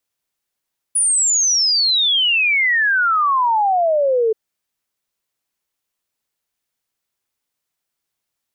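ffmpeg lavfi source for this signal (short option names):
-f lavfi -i "aevalsrc='0.224*clip(min(t,3.38-t)/0.01,0,1)*sin(2*PI*9900*3.38/log(430/9900)*(exp(log(430/9900)*t/3.38)-1))':d=3.38:s=44100"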